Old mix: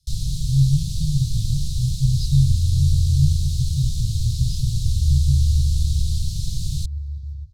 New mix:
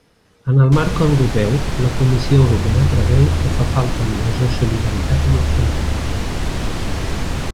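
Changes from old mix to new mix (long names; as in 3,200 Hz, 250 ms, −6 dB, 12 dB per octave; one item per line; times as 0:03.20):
speech +5.0 dB
first sound: entry +0.65 s
master: remove Chebyshev band-stop filter 150–3,900 Hz, order 4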